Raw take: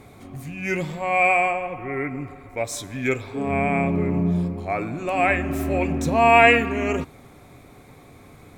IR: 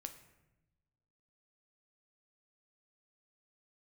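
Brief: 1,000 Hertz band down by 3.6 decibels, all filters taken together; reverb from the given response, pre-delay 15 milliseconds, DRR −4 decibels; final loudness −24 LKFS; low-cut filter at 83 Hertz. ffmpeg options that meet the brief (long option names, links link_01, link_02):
-filter_complex "[0:a]highpass=83,equalizer=frequency=1000:width_type=o:gain=-6,asplit=2[link_01][link_02];[1:a]atrim=start_sample=2205,adelay=15[link_03];[link_02][link_03]afir=irnorm=-1:irlink=0,volume=8dB[link_04];[link_01][link_04]amix=inputs=2:normalize=0,volume=-6.5dB"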